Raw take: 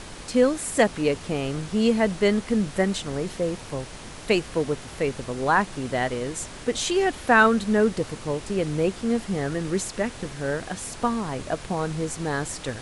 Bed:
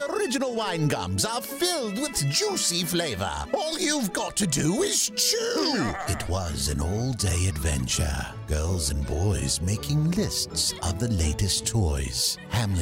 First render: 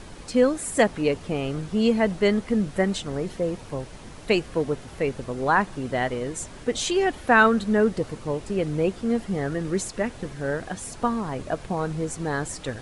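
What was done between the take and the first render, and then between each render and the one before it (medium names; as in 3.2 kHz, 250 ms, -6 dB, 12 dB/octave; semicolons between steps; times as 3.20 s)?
noise reduction 7 dB, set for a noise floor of -40 dBFS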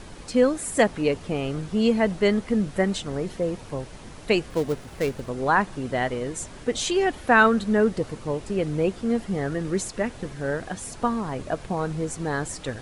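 4.50–5.29 s: dead-time distortion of 0.12 ms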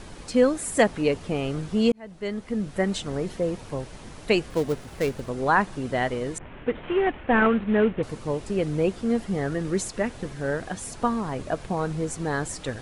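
1.92–3.03 s: fade in linear; 6.38–8.03 s: CVSD coder 16 kbps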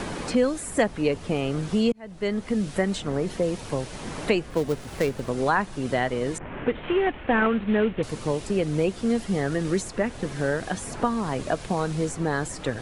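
three bands compressed up and down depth 70%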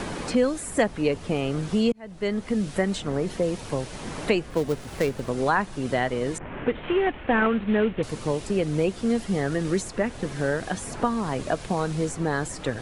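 no audible change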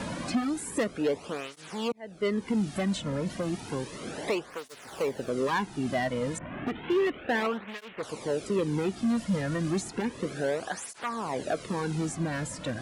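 hard clipper -21 dBFS, distortion -11 dB; cancelling through-zero flanger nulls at 0.32 Hz, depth 2.7 ms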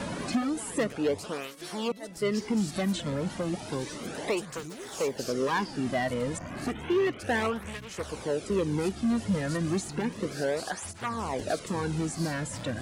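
add bed -18.5 dB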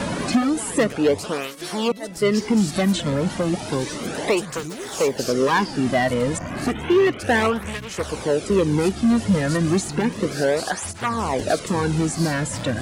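trim +9 dB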